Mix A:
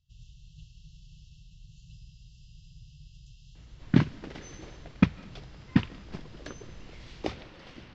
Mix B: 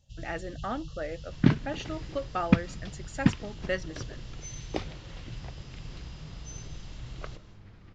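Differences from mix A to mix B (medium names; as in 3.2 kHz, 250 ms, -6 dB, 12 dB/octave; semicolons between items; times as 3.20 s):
speech: unmuted; first sound +8.5 dB; second sound: entry -2.50 s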